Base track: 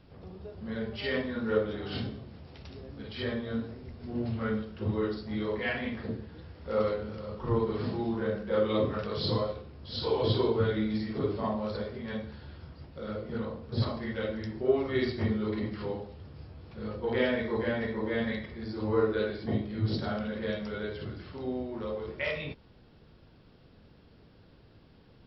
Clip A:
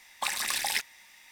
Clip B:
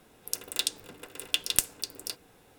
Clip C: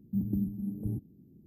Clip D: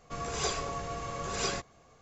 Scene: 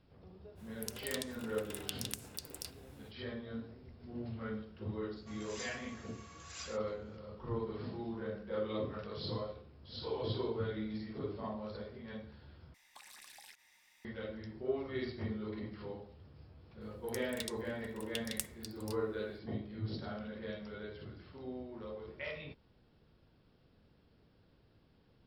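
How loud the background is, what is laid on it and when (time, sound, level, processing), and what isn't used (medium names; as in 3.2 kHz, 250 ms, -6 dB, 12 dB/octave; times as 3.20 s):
base track -10 dB
0.55 s: add B -3 dB, fades 0.05 s + compression, threshold -35 dBFS
5.16 s: add D -12 dB + high-pass 1.4 kHz
12.74 s: replace with A -12.5 dB + compression 16:1, threshold -38 dBFS
16.81 s: add B -14.5 dB
not used: C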